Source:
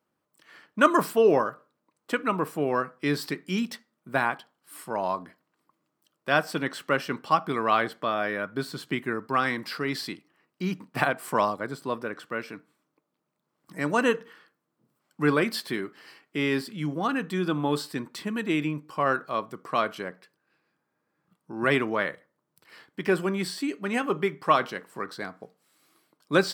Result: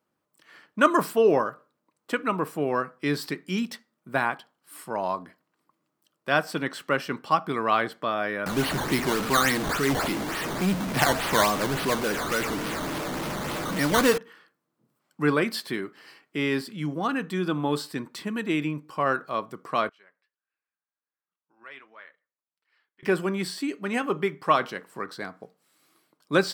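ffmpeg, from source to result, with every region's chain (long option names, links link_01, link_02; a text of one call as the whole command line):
ffmpeg -i in.wav -filter_complex "[0:a]asettb=1/sr,asplit=3[link_01][link_02][link_03];[link_01]atrim=end=8.464[link_04];[link_02]atrim=start=8.46:end=14.18,asetpts=PTS-STARTPTS,afade=type=in:duration=0.004:curve=qsin,afade=type=out:start_time=5.716:duration=0.004:curve=qsin,aeval=exprs='val(0)+0.5*0.0596*sgn(val(0))':channel_layout=same,acrusher=samples=12:mix=1:aa=0.000001:lfo=1:lforange=12:lforate=3.5,asplit=2[link_05][link_06];[link_06]adelay=15,volume=-13dB[link_07];[link_05][link_07]amix=inputs=2:normalize=0,atrim=end_sample=252252[link_08];[link_03]atrim=start=14.176[link_09];[link_04][link_08]acrossfade=duration=0.004:curve1=hsin:curve2=qsin[link_10];[link_10][link_09]acrossfade=duration=0.004:curve1=qsin:curve2=hsin,asettb=1/sr,asplit=3[link_11][link_12][link_13];[link_11]atrim=end=19.894[link_14];[link_12]atrim=start=19.89:end=23.03,asetpts=PTS-STARTPTS,afade=type=in:duration=0.004:curve=qsin,afade=type=out:start_time=3.136:duration=0.004:curve=qsin,lowpass=2100,aderivative,flanger=delay=1.8:depth=8.2:regen=49:speed=1.4:shape=triangular[link_15];[link_13]atrim=start=23.026[link_16];[link_14][link_15]acrossfade=duration=0.004:curve1=hsin:curve2=qsin[link_17];[link_17][link_16]acrossfade=duration=0.004:curve1=qsin:curve2=hsin" out.wav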